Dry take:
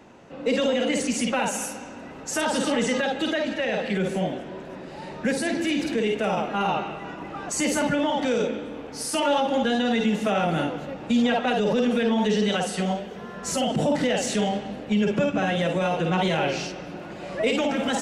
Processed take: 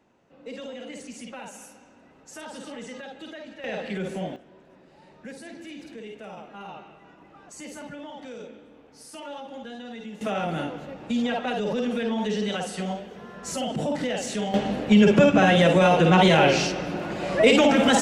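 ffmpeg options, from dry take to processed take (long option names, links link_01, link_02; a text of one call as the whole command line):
ffmpeg -i in.wav -af "asetnsamples=nb_out_samples=441:pad=0,asendcmd='3.64 volume volume -5.5dB;4.36 volume volume -16dB;10.21 volume volume -4.5dB;14.54 volume volume 6.5dB',volume=-15dB" out.wav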